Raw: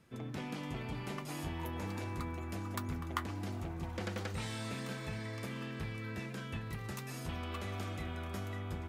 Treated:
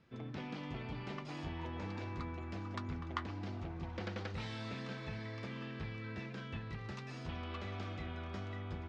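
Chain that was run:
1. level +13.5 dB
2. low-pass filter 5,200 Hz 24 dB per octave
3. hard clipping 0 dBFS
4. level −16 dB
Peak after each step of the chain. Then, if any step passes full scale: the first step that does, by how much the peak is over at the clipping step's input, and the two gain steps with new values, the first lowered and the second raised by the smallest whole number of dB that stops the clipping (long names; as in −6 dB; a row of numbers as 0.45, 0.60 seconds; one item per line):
−4.0, −4.0, −4.0, −20.0 dBFS
no step passes full scale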